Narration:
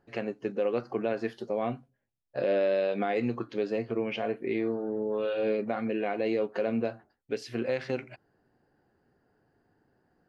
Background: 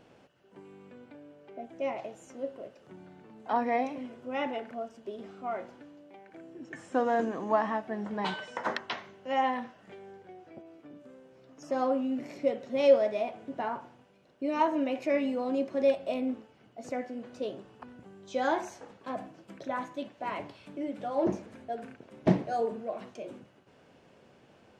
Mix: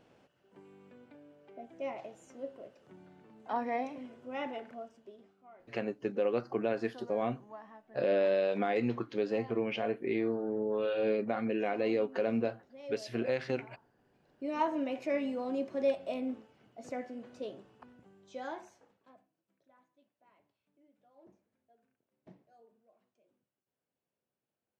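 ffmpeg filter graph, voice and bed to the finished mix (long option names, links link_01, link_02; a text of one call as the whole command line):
ffmpeg -i stem1.wav -i stem2.wav -filter_complex "[0:a]adelay=5600,volume=-2dB[link_01];[1:a]volume=12dB,afade=type=out:start_time=4.66:duration=0.69:silence=0.149624,afade=type=in:start_time=13.93:duration=0.62:silence=0.133352,afade=type=out:start_time=17.13:duration=2.13:silence=0.0375837[link_02];[link_01][link_02]amix=inputs=2:normalize=0" out.wav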